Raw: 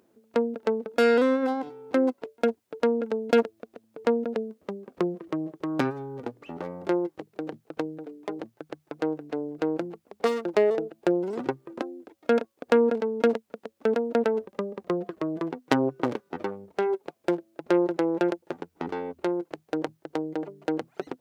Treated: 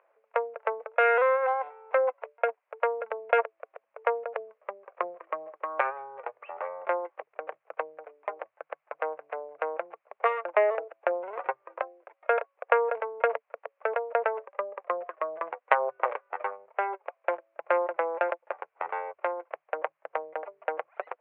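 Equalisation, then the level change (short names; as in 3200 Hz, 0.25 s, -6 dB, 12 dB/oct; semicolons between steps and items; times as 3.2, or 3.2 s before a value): elliptic band-pass 560–2400 Hz, stop band 40 dB; bell 1100 Hz +4.5 dB 0.22 oct; +4.5 dB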